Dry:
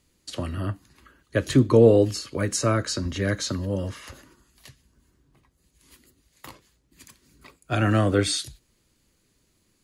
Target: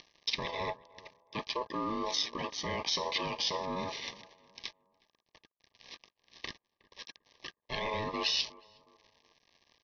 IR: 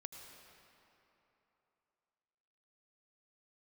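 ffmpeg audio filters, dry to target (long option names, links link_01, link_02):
-filter_complex "[0:a]highpass=frequency=94:width=0.5412,highpass=frequency=94:width=1.3066,lowshelf=frequency=200:gain=-8,areverse,acompressor=threshold=-28dB:ratio=16,areverse,alimiter=level_in=2.5dB:limit=-24dB:level=0:latency=1:release=39,volume=-2.5dB,acompressor=mode=upward:threshold=-40dB:ratio=2.5,aexciter=amount=3.5:drive=2.3:freq=2400,aresample=11025,aeval=exprs='sgn(val(0))*max(abs(val(0))-0.00473,0)':channel_layout=same,aresample=44100,asplit=2[link_01][link_02];[link_02]adelay=364,lowpass=frequency=810:poles=1,volume=-19dB,asplit=2[link_03][link_04];[link_04]adelay=364,lowpass=frequency=810:poles=1,volume=0.38,asplit=2[link_05][link_06];[link_06]adelay=364,lowpass=frequency=810:poles=1,volume=0.38[link_07];[link_01][link_03][link_05][link_07]amix=inputs=4:normalize=0,aeval=exprs='val(0)*sin(2*PI*750*n/s)':channel_layout=same,asuperstop=centerf=1400:order=20:qfactor=3.8,volume=4.5dB"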